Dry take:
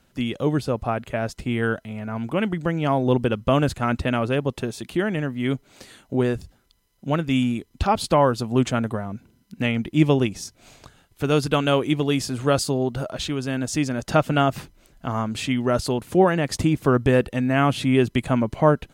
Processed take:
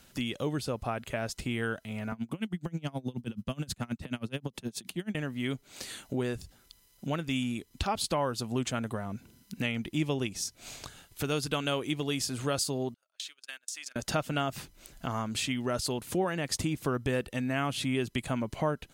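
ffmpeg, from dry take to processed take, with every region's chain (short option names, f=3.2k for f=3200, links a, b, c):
-filter_complex "[0:a]asettb=1/sr,asplit=3[a][b][c];[a]atrim=end=2.124[d];[b]atrim=start=2.12:end=5.15,asetpts=PTS-STARTPTS,afade=t=in:d=0.004:c=qsin,afade=t=out:st=3.026:d=0.004:c=qsin,equalizer=f=200:w=1.6:g=11.5,acrossover=split=120|3000[e][f][g];[f]acompressor=threshold=-24dB:ratio=3:attack=3.2:release=140:knee=2.83:detection=peak[h];[e][h][g]amix=inputs=3:normalize=0,aeval=exprs='val(0)*pow(10,-27*(0.5-0.5*cos(2*PI*9.4*n/s))/20)':c=same[i];[c]atrim=start=5.146[j];[d][i]acrossfade=d=0.004:c1=hsin:c2=qsin[k];[k][j]acrossfade=d=0.004:c1=qsin:c2=hsin,asettb=1/sr,asplit=3[l][m][n];[l]atrim=end=12.944[o];[m]atrim=start=12.94:end=13.96,asetpts=PTS-STARTPTS,afade=t=in:d=0.004:c=qsin,afade=t=out:st=1.016:d=0.004:c=qsin,highpass=1.4k,agate=range=-40dB:threshold=-37dB:ratio=16:release=100:detection=peak,acompressor=threshold=-40dB:ratio=12:attack=3.2:release=140:knee=1:detection=peak[p];[n]atrim=start=13.956[q];[o][p]acrossfade=d=0.004:c1=hsin:c2=qsin[r];[r][q]acrossfade=d=0.004:c1=qsin:c2=hsin,highshelf=f=2.4k:g=9.5,acompressor=threshold=-37dB:ratio=2"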